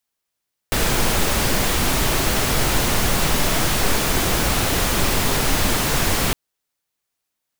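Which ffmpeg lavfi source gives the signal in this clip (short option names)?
-f lavfi -i "anoisesrc=c=pink:a=0.61:d=5.61:r=44100:seed=1"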